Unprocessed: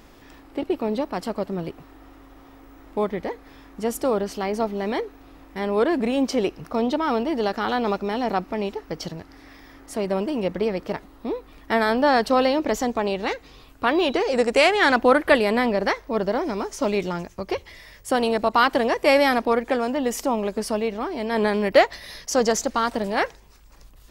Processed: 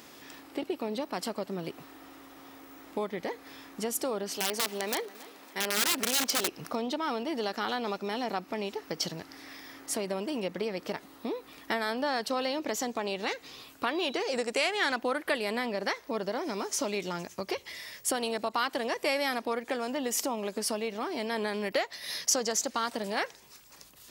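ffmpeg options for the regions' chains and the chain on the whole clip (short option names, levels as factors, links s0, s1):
-filter_complex "[0:a]asettb=1/sr,asplit=3[s0][s1][s2];[s0]atrim=end=4.374[s3];[s1]atrim=start=4.37:end=6.48,asetpts=PTS-STARTPTS,afade=t=in:d=0.004:c=qsin,afade=t=out:st=2.106:d=0.004:c=qsin,highpass=f=440:p=1,aeval=exprs='(mod(10*val(0)+1,2)-1)/10':c=same,aecho=1:1:277|554|831:0.0794|0.0334|0.014,atrim=end_sample=93051[s4];[s2]atrim=start=6.476[s5];[s3][s4]acrossfade=d=0.004:c1=hsin:c2=qsin[s6];[s6][s5]acrossfade=d=0.004:c1=qsin:c2=hsin,acompressor=threshold=0.0355:ratio=3,highpass=150,highshelf=f=2300:g=10,volume=0.75"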